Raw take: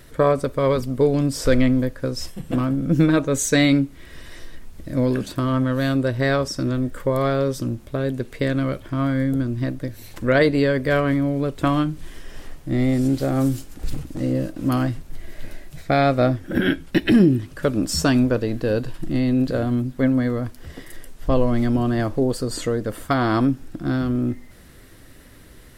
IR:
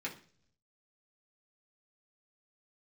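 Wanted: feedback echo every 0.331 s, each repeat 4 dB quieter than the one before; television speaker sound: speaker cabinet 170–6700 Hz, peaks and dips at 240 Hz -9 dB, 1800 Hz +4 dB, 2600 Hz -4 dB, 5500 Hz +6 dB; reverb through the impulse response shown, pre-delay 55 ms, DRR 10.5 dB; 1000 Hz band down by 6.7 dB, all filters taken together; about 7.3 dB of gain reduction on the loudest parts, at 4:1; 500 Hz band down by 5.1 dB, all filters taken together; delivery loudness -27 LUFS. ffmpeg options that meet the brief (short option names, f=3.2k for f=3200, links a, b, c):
-filter_complex "[0:a]equalizer=f=500:t=o:g=-3.5,equalizer=f=1k:t=o:g=-9,acompressor=threshold=-21dB:ratio=4,aecho=1:1:331|662|993|1324|1655|1986|2317|2648|2979:0.631|0.398|0.25|0.158|0.0994|0.0626|0.0394|0.0249|0.0157,asplit=2[a][b];[1:a]atrim=start_sample=2205,adelay=55[c];[b][c]afir=irnorm=-1:irlink=0,volume=-12.5dB[d];[a][d]amix=inputs=2:normalize=0,highpass=f=170:w=0.5412,highpass=f=170:w=1.3066,equalizer=f=240:t=q:w=4:g=-9,equalizer=f=1.8k:t=q:w=4:g=4,equalizer=f=2.6k:t=q:w=4:g=-4,equalizer=f=5.5k:t=q:w=4:g=6,lowpass=f=6.7k:w=0.5412,lowpass=f=6.7k:w=1.3066,volume=1.5dB"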